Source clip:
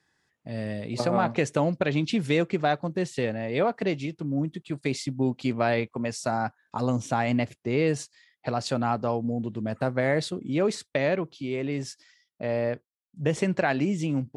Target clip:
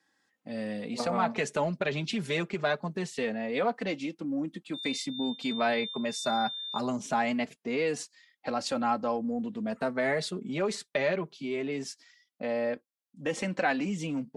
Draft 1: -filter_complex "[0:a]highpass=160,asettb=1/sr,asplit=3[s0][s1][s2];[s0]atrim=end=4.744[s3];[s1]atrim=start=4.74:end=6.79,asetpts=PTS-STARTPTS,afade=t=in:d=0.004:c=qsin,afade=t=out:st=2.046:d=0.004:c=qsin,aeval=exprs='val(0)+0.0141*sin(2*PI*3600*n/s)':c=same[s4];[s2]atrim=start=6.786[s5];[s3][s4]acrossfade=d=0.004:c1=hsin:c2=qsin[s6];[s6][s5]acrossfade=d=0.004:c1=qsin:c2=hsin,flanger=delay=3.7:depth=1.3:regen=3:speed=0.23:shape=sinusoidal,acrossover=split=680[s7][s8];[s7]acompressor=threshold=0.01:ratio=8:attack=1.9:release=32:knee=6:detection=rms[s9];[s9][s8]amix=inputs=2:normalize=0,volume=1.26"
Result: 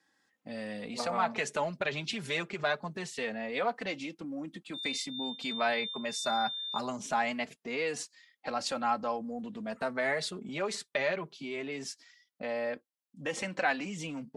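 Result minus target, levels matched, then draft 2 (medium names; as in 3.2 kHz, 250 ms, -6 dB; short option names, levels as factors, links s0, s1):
compression: peak gain reduction +8.5 dB
-filter_complex "[0:a]highpass=160,asettb=1/sr,asplit=3[s0][s1][s2];[s0]atrim=end=4.744[s3];[s1]atrim=start=4.74:end=6.79,asetpts=PTS-STARTPTS,afade=t=in:d=0.004:c=qsin,afade=t=out:st=2.046:d=0.004:c=qsin,aeval=exprs='val(0)+0.0141*sin(2*PI*3600*n/s)':c=same[s4];[s2]atrim=start=6.786[s5];[s3][s4]acrossfade=d=0.004:c1=hsin:c2=qsin[s6];[s6][s5]acrossfade=d=0.004:c1=qsin:c2=hsin,flanger=delay=3.7:depth=1.3:regen=3:speed=0.23:shape=sinusoidal,acrossover=split=680[s7][s8];[s7]acompressor=threshold=0.0316:ratio=8:attack=1.9:release=32:knee=6:detection=rms[s9];[s9][s8]amix=inputs=2:normalize=0,volume=1.26"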